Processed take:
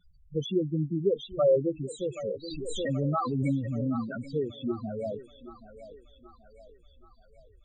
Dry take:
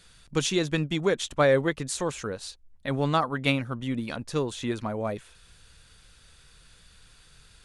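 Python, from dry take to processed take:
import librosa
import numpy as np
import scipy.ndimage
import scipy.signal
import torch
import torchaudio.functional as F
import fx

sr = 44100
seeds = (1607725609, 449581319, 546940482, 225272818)

y = fx.spec_topn(x, sr, count=4)
y = fx.echo_thinned(y, sr, ms=777, feedback_pct=60, hz=430.0, wet_db=-11.5)
y = fx.pre_swell(y, sr, db_per_s=22.0, at=(2.43, 4.24))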